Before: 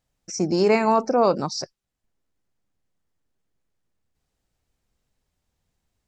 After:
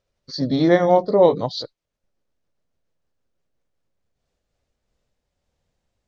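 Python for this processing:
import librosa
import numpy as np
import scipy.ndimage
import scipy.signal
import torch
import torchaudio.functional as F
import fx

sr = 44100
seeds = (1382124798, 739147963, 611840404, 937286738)

y = fx.pitch_glide(x, sr, semitones=-4.5, runs='ending unshifted')
y = scipy.signal.sosfilt(scipy.signal.butter(2, 7200.0, 'lowpass', fs=sr, output='sos'), y)
y = fx.peak_eq(y, sr, hz=550.0, db=8.0, octaves=0.51)
y = y * 10.0 ** (1.5 / 20.0)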